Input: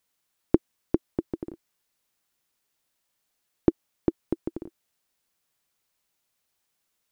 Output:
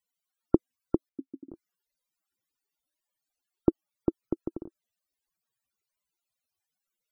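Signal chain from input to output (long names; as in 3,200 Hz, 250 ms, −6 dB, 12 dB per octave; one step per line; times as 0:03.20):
spectral peaks only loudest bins 64
0:01.09–0:01.51: formant filter i
level −2 dB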